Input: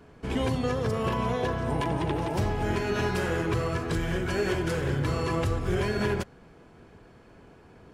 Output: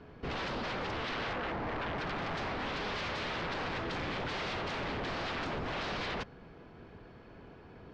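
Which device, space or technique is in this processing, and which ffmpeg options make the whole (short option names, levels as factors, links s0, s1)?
synthesiser wavefolder: -filter_complex "[0:a]asettb=1/sr,asplit=3[s0][s1][s2];[s0]atrim=end=1.334[s3];[s1]atrim=start=1.33:end=1.98,asetpts=PTS-STARTPTS,afade=t=in:d=0.004:c=qsin,afade=t=out:st=0.646:d=0.004:c=qsin,lowpass=1100[s4];[s2]atrim=start=1.976[s5];[s3][s4]acrossfade=d=0.004:c1=hsin:c2=qsin[s6];[s6][s5]acrossfade=d=0.004:c1=qsin:c2=hsin,aeval=exprs='0.0266*(abs(mod(val(0)/0.0266+3,4)-2)-1)':c=same,lowpass=f=4800:w=0.5412,lowpass=f=4800:w=1.3066"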